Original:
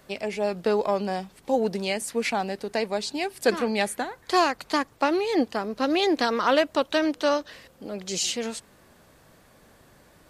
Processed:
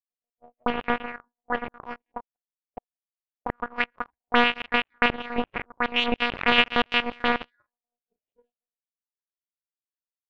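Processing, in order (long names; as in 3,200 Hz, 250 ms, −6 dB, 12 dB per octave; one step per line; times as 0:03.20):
far-end echo of a speakerphone 110 ms, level −22 dB
convolution reverb RT60 1.8 s, pre-delay 115 ms, DRR 5 dB
automatic gain control gain up to 7 dB
one-pitch LPC vocoder at 8 kHz 240 Hz
0:02.17–0:03.50: output level in coarse steps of 17 dB
power curve on the samples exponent 3
noise reduction from a noise print of the clip's start 23 dB
leveller curve on the samples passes 3
envelope-controlled low-pass 650–2,800 Hz up, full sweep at −21 dBFS
level −5 dB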